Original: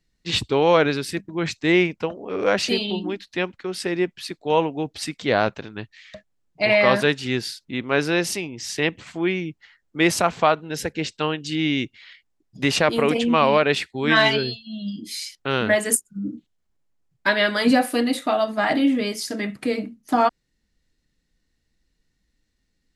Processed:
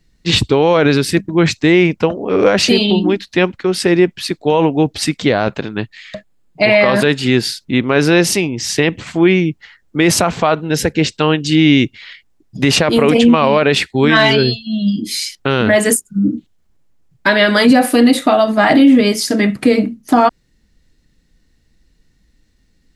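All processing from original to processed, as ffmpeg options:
ffmpeg -i in.wav -filter_complex "[0:a]asettb=1/sr,asplit=3[link_01][link_02][link_03];[link_01]atrim=end=5.484[link_04];[link_02]atrim=start=5.48:end=7.44,asetpts=PTS-STARTPTS,afade=type=in:duration=0.004:curve=qsin,afade=type=out:start_time=1.956:duration=0.004:curve=qsin,equalizer=frequency=78:width_type=o:width=0.63:gain=-11.5,bandreject=frequency=5800:width=8.3[link_05];[link_03]atrim=start=7.436[link_06];[link_04][link_05]acrossfade=duration=0.004:curve1=hsin:curve2=qsin[link_07];[link_07][link_06]acrossfade=duration=0.004:curve1=qsin:curve2=hsin,lowshelf=frequency=400:gain=5,alimiter=level_in=11.5dB:limit=-1dB:release=50:level=0:latency=1,volume=-1dB" out.wav

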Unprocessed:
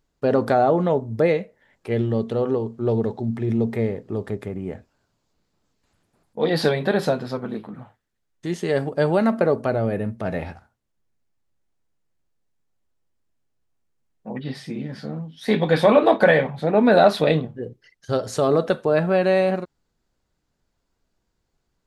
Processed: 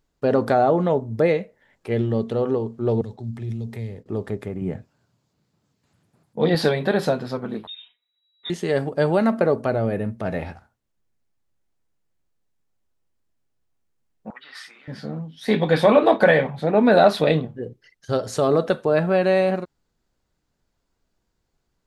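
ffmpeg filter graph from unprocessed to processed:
ffmpeg -i in.wav -filter_complex "[0:a]asettb=1/sr,asplit=3[link_01][link_02][link_03];[link_01]atrim=end=3.014[link_04];[link_02]atrim=start=3.01:end=4.06,asetpts=PTS-STARTPTS,afade=type=in:duration=0.004:curve=qsin,afade=type=out:start_time=1.046:duration=0.004:curve=qsin,acrossover=split=140|3000[link_05][link_06][link_07];[link_06]acompressor=threshold=-37dB:ratio=6:attack=3.2:release=140:knee=2.83:detection=peak[link_08];[link_05][link_08][link_07]amix=inputs=3:normalize=0,agate=range=-33dB:threshold=-40dB:ratio=3:release=100:detection=peak[link_09];[link_03]atrim=start=4.056[link_10];[link_04][link_09]acrossfade=duration=0.004:curve1=hsin:curve2=qsin[link_11];[link_11][link_10]acrossfade=duration=0.004:curve1=qsin:curve2=hsin,asettb=1/sr,asplit=3[link_12][link_13][link_14];[link_12]atrim=end=4.614[link_15];[link_13]atrim=start=4.61:end=6.55,asetpts=PTS-STARTPTS,afade=type=in:duration=0.004:curve=qsin,afade=type=out:start_time=1.936:duration=0.004:curve=qsin,highpass=91,equalizer=frequency=130:width_type=o:width=1.3:gain=10[link_16];[link_14]atrim=start=6.546[link_17];[link_15][link_16]acrossfade=duration=0.004:curve1=hsin:curve2=qsin[link_18];[link_18][link_17]acrossfade=duration=0.004:curve1=qsin:curve2=hsin,asettb=1/sr,asplit=3[link_19][link_20][link_21];[link_19]atrim=end=7.674[link_22];[link_20]atrim=start=7.67:end=8.5,asetpts=PTS-STARTPTS,afade=type=in:duration=0.004:curve=qsin,afade=type=out:start_time=0.826:duration=0.004:curve=qsin,equalizer=frequency=680:width=0.32:gain=-9,aecho=1:1:4.1:0.87,atrim=end_sample=36603,lowpass=frequency=3300:width_type=q:width=0.5098,lowpass=frequency=3300:width_type=q:width=0.6013,lowpass=frequency=3300:width_type=q:width=0.9,lowpass=frequency=3300:width_type=q:width=2.563,afreqshift=-3900[link_23];[link_21]atrim=start=8.496[link_24];[link_22][link_23]acrossfade=duration=0.004:curve1=hsin:curve2=qsin[link_25];[link_25][link_24]acrossfade=duration=0.004:curve1=qsin:curve2=hsin,asettb=1/sr,asplit=3[link_26][link_27][link_28];[link_26]atrim=end=14.304[link_29];[link_27]atrim=start=14.3:end=14.88,asetpts=PTS-STARTPTS,afade=type=in:duration=0.004:curve=qsin,afade=type=out:start_time=0.576:duration=0.004:curve=qsin,acompressor=threshold=-32dB:ratio=2.5:attack=3.2:release=140:knee=1:detection=peak,highpass=frequency=1300:width_type=q:width=4.6[link_30];[link_28]atrim=start=14.876[link_31];[link_29][link_30]acrossfade=duration=0.004:curve1=hsin:curve2=qsin[link_32];[link_32][link_31]acrossfade=duration=0.004:curve1=qsin:curve2=hsin" out.wav

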